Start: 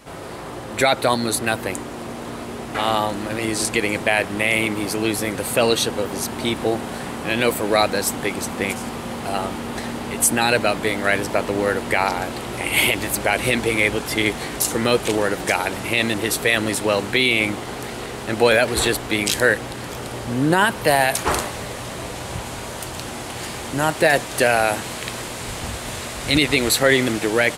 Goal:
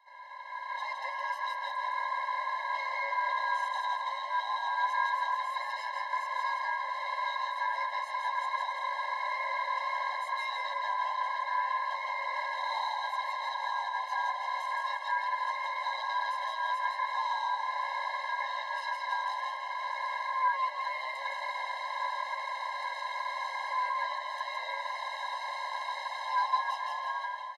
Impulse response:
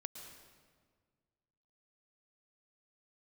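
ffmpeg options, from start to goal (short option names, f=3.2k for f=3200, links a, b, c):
-filter_complex "[0:a]equalizer=f=2.4k:w=4.8:g=8,aeval=exprs='max(val(0),0)':c=same,acompressor=threshold=-25dB:ratio=6,volume=25dB,asoftclip=hard,volume=-25dB,lowpass=10k,dynaudnorm=f=110:g=11:m=11.5dB,asplit=3[a][b][c];[a]bandpass=f=300:t=q:w=8,volume=0dB[d];[b]bandpass=f=870:t=q:w=8,volume=-6dB[e];[c]bandpass=f=2.24k:t=q:w=8,volume=-9dB[f];[d][e][f]amix=inputs=3:normalize=0,bandreject=f=6.8k:w=12,asplit=2[g][h];[h]asplit=6[i][j][k][l][m][n];[i]adelay=165,afreqshift=-37,volume=-3dB[o];[j]adelay=330,afreqshift=-74,volume=-9.4dB[p];[k]adelay=495,afreqshift=-111,volume=-15.8dB[q];[l]adelay=660,afreqshift=-148,volume=-22.1dB[r];[m]adelay=825,afreqshift=-185,volume=-28.5dB[s];[n]adelay=990,afreqshift=-222,volume=-34.9dB[t];[o][p][q][r][s][t]amix=inputs=6:normalize=0[u];[g][u]amix=inputs=2:normalize=0,aeval=exprs='val(0)*sin(2*PI*1300*n/s)':c=same,lowshelf=f=370:g=5,afftfilt=real='re*eq(mod(floor(b*sr/1024/540),2),1)':imag='im*eq(mod(floor(b*sr/1024/540),2),1)':win_size=1024:overlap=0.75,volume=5.5dB"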